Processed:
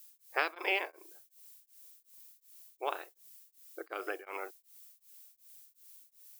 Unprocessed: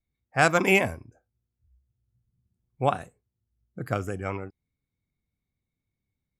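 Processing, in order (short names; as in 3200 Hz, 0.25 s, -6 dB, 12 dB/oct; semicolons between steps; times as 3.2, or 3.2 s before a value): spectral limiter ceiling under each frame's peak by 13 dB; compressor, threshold -24 dBFS, peak gain reduction 10 dB; brick-wall FIR band-pass 310–5300 Hz; added noise violet -53 dBFS; beating tremolo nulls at 2.7 Hz; gain -2 dB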